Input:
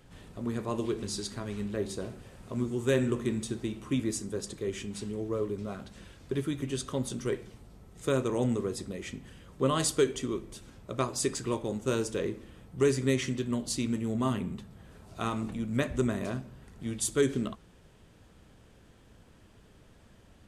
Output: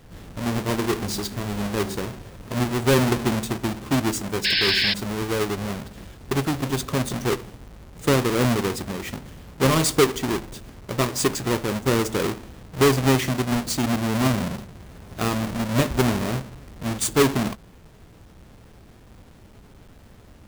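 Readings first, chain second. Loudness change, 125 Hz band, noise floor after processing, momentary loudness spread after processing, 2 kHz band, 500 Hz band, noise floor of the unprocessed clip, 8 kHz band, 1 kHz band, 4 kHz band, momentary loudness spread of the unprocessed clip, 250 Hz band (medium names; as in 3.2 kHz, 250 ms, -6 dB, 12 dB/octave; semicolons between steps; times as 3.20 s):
+9.0 dB, +9.5 dB, -49 dBFS, 15 LU, +13.5 dB, +6.5 dB, -58 dBFS, +7.5 dB, +12.0 dB, +14.0 dB, 15 LU, +7.5 dB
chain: square wave that keeps the level; painted sound noise, 4.44–4.94 s, 1.5–5.4 kHz -25 dBFS; trim +4 dB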